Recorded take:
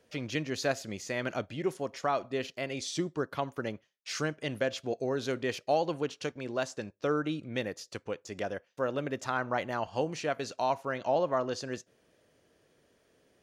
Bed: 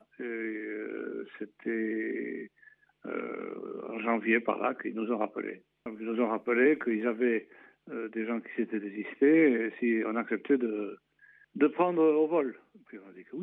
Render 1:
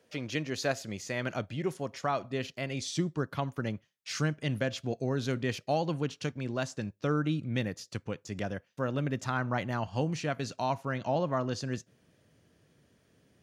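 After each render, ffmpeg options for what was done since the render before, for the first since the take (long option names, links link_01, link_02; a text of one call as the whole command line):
ffmpeg -i in.wav -af "highpass=100,asubboost=boost=5:cutoff=190" out.wav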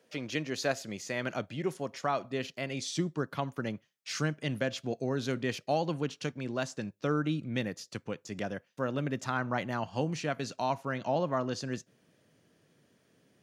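ffmpeg -i in.wav -af "highpass=140" out.wav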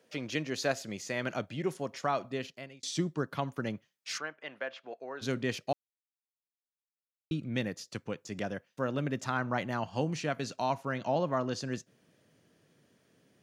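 ffmpeg -i in.wav -filter_complex "[0:a]asplit=3[link_01][link_02][link_03];[link_01]afade=type=out:start_time=4.17:duration=0.02[link_04];[link_02]highpass=720,lowpass=2100,afade=type=in:start_time=4.17:duration=0.02,afade=type=out:start_time=5.21:duration=0.02[link_05];[link_03]afade=type=in:start_time=5.21:duration=0.02[link_06];[link_04][link_05][link_06]amix=inputs=3:normalize=0,asplit=4[link_07][link_08][link_09][link_10];[link_07]atrim=end=2.83,asetpts=PTS-STARTPTS,afade=type=out:start_time=2.27:duration=0.56[link_11];[link_08]atrim=start=2.83:end=5.73,asetpts=PTS-STARTPTS,afade=type=in:duration=0.004:curve=hsin,afade=type=out:start_time=2.896:duration=0.004:curve=hsin[link_12];[link_09]atrim=start=5.73:end=7.31,asetpts=PTS-STARTPTS,volume=0[link_13];[link_10]atrim=start=7.31,asetpts=PTS-STARTPTS,afade=type=in:duration=0.004:curve=hsin[link_14];[link_11][link_12][link_13][link_14]concat=n=4:v=0:a=1" out.wav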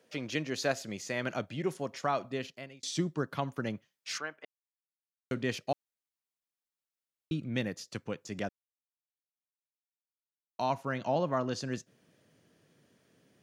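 ffmpeg -i in.wav -filter_complex "[0:a]asplit=5[link_01][link_02][link_03][link_04][link_05];[link_01]atrim=end=4.45,asetpts=PTS-STARTPTS,afade=type=out:start_time=4.446:duration=0.004:curve=hsin[link_06];[link_02]atrim=start=4.45:end=5.31,asetpts=PTS-STARTPTS,volume=0[link_07];[link_03]atrim=start=5.31:end=8.49,asetpts=PTS-STARTPTS,afade=type=in:duration=0.004:curve=hsin,afade=type=out:start_time=3.176:duration=0.004:curve=hsin[link_08];[link_04]atrim=start=8.49:end=10.59,asetpts=PTS-STARTPTS,volume=0[link_09];[link_05]atrim=start=10.59,asetpts=PTS-STARTPTS,afade=type=in:duration=0.004:curve=hsin[link_10];[link_06][link_07][link_08][link_09][link_10]concat=n=5:v=0:a=1" out.wav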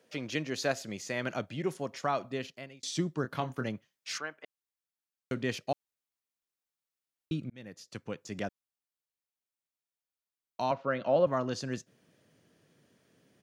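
ffmpeg -i in.wav -filter_complex "[0:a]asplit=3[link_01][link_02][link_03];[link_01]afade=type=out:start_time=3.23:duration=0.02[link_04];[link_02]asplit=2[link_05][link_06];[link_06]adelay=24,volume=-6.5dB[link_07];[link_05][link_07]amix=inputs=2:normalize=0,afade=type=in:start_time=3.23:duration=0.02,afade=type=out:start_time=3.66:duration=0.02[link_08];[link_03]afade=type=in:start_time=3.66:duration=0.02[link_09];[link_04][link_08][link_09]amix=inputs=3:normalize=0,asettb=1/sr,asplit=3[link_10][link_11][link_12];[link_10]atrim=end=10.714[link_13];[link_11]atrim=start=10.71:end=11.27,asetpts=PTS-STARTPTS,afade=type=in:duration=0.004:curve=qsin,afade=type=out:start_time=0.556:duration=0.004:curve=qsin,highpass=140,equalizer=frequency=550:width_type=q:width=4:gain=9,equalizer=frequency=870:width_type=q:width=4:gain=-5,equalizer=frequency=1300:width_type=q:width=4:gain=6,lowpass=frequency=4300:width=0.5412,lowpass=frequency=4300:width=1.3066[link_14];[link_12]atrim=start=11.266[link_15];[link_13][link_14]acrossfade=duration=0.004:curve1=hsin:curve2=qsin[link_16];[link_16][link_15]acrossfade=duration=0.004:curve1=qsin:curve2=hsin,asplit=2[link_17][link_18];[link_17]atrim=end=7.5,asetpts=PTS-STARTPTS,afade=type=out:start_time=7.496:duration=0.004:curve=hsin[link_19];[link_18]atrim=start=7.5,asetpts=PTS-STARTPTS,afade=type=in:duration=0.95:curve=qsin[link_20];[link_19][link_20]concat=n=2:v=0:a=1" out.wav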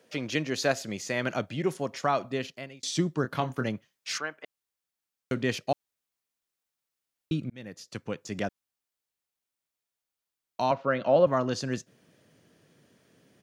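ffmpeg -i in.wav -af "volume=4.5dB" out.wav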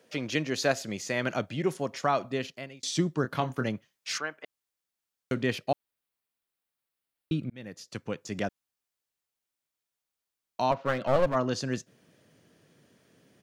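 ffmpeg -i in.wav -filter_complex "[0:a]asettb=1/sr,asplit=3[link_01][link_02][link_03];[link_01]atrim=end=5.464[link_04];[link_02]atrim=start=5.46:end=7.63,asetpts=PTS-STARTPTS,afade=type=in:duration=0.004:curve=qsin,afade=type=out:start_time=2.166:duration=0.004:curve=qsin,equalizer=frequency=6400:width_type=o:width=0.72:gain=-7[link_05];[link_03]atrim=start=7.626[link_06];[link_04][link_05]acrossfade=duration=0.004:curve1=hsin:curve2=qsin[link_07];[link_07][link_06]acrossfade=duration=0.004:curve1=qsin:curve2=hsin,asplit=3[link_08][link_09][link_10];[link_08]afade=type=out:start_time=10.71:duration=0.02[link_11];[link_09]aeval=exprs='clip(val(0),-1,0.0335)':channel_layout=same,afade=type=in:start_time=10.71:duration=0.02,afade=type=out:start_time=11.34:duration=0.02[link_12];[link_10]afade=type=in:start_time=11.34:duration=0.02[link_13];[link_11][link_12][link_13]amix=inputs=3:normalize=0" out.wav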